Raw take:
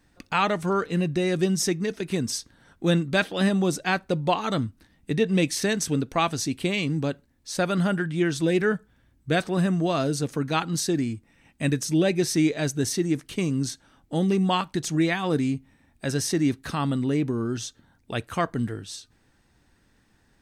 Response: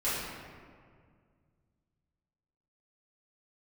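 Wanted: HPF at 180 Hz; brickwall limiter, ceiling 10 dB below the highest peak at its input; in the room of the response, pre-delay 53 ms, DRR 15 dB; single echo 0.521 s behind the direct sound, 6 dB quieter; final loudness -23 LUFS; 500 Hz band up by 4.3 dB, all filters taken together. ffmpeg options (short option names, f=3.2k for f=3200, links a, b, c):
-filter_complex "[0:a]highpass=180,equalizer=f=500:t=o:g=6,alimiter=limit=-16dB:level=0:latency=1,aecho=1:1:521:0.501,asplit=2[a][b];[1:a]atrim=start_sample=2205,adelay=53[c];[b][c]afir=irnorm=-1:irlink=0,volume=-24dB[d];[a][d]amix=inputs=2:normalize=0,volume=3.5dB"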